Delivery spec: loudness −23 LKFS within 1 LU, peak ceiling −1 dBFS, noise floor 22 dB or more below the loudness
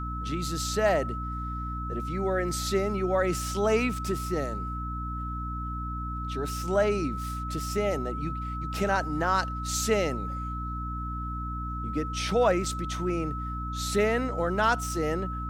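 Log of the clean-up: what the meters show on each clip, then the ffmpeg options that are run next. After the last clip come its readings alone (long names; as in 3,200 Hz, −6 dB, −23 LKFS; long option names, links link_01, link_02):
mains hum 60 Hz; hum harmonics up to 300 Hz; level of the hum −32 dBFS; interfering tone 1,300 Hz; level of the tone −35 dBFS; integrated loudness −29.0 LKFS; sample peak −11.0 dBFS; target loudness −23.0 LKFS
→ -af "bandreject=frequency=60:width_type=h:width=4,bandreject=frequency=120:width_type=h:width=4,bandreject=frequency=180:width_type=h:width=4,bandreject=frequency=240:width_type=h:width=4,bandreject=frequency=300:width_type=h:width=4"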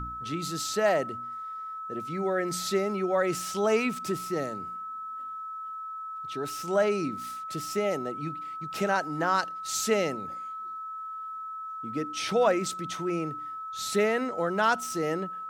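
mains hum none found; interfering tone 1,300 Hz; level of the tone −35 dBFS
→ -af "bandreject=frequency=1300:width=30"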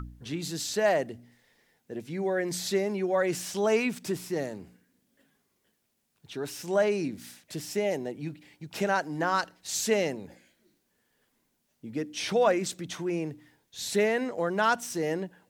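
interfering tone none found; integrated loudness −29.5 LKFS; sample peak −12.0 dBFS; target loudness −23.0 LKFS
→ -af "volume=6.5dB"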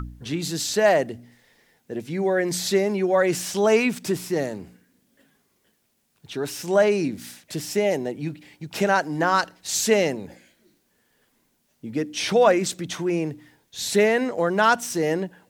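integrated loudness −23.0 LKFS; sample peak −5.5 dBFS; background noise floor −69 dBFS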